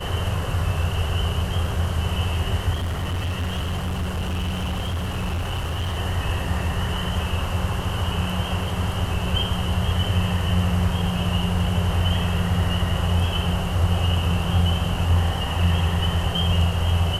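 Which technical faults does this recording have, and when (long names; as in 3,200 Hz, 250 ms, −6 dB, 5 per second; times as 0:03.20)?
0:02.73–0:05.98: clipping −22 dBFS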